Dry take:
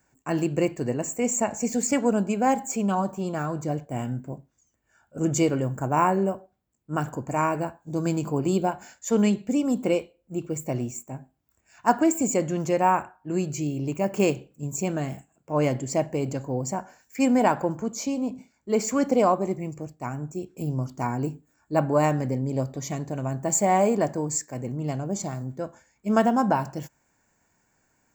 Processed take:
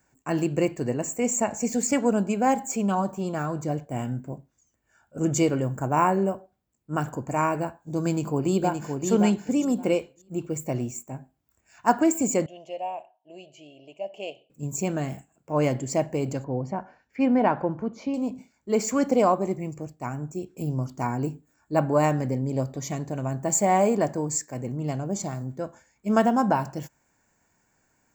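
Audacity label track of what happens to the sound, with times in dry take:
8.050000	9.070000	delay throw 570 ms, feedback 15%, level −5 dB
12.460000	14.500000	pair of resonant band-passes 1,400 Hz, apart 2.2 octaves
16.440000	18.140000	high-frequency loss of the air 290 metres

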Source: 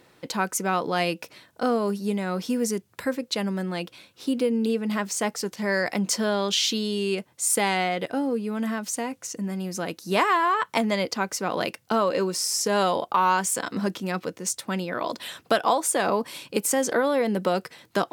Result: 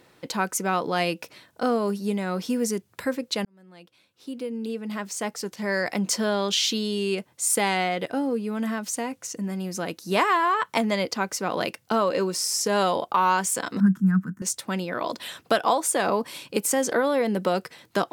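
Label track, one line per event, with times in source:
3.450000	6.100000	fade in
13.800000	14.420000	drawn EQ curve 120 Hz 0 dB, 190 Hz +13 dB, 330 Hz −11 dB, 530 Hz −28 dB, 1,600 Hz +2 dB, 2,300 Hz −23 dB, 4,100 Hz −29 dB, 7,100 Hz −12 dB, 14,000 Hz −8 dB

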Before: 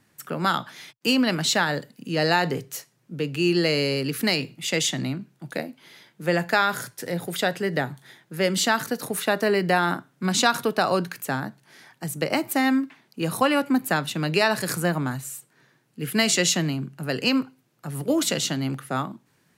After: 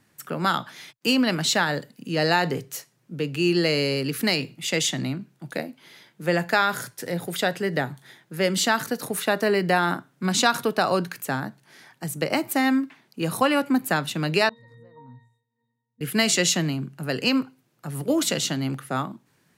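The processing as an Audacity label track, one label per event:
14.490000	16.010000	resonances in every octave A#, decay 0.59 s

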